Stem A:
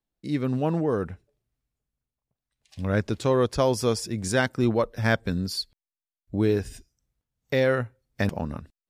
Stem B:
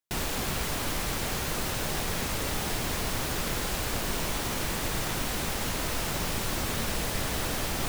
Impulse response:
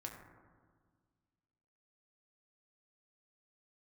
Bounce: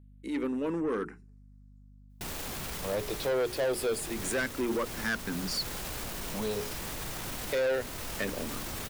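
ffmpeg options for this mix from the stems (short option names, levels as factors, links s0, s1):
-filter_complex "[0:a]highpass=280,bandreject=f=60:t=h:w=6,bandreject=f=120:t=h:w=6,bandreject=f=180:t=h:w=6,bandreject=f=240:t=h:w=6,bandreject=f=300:t=h:w=6,bandreject=f=360:t=h:w=6,bandreject=f=420:t=h:w=6,asplit=2[s0][s1];[s1]afreqshift=-0.25[s2];[s0][s2]amix=inputs=2:normalize=1,volume=1.26,asplit=2[s3][s4];[1:a]highshelf=f=9100:g=4.5,alimiter=level_in=1.78:limit=0.0631:level=0:latency=1,volume=0.562,adelay=2100,volume=1.12[s5];[s4]apad=whole_len=440349[s6];[s5][s6]sidechaincompress=threshold=0.0447:ratio=3:attack=46:release=518[s7];[s3][s7]amix=inputs=2:normalize=0,aeval=exprs='val(0)+0.00224*(sin(2*PI*50*n/s)+sin(2*PI*2*50*n/s)/2+sin(2*PI*3*50*n/s)/3+sin(2*PI*4*50*n/s)/4+sin(2*PI*5*50*n/s)/5)':c=same,asoftclip=type=tanh:threshold=0.0562"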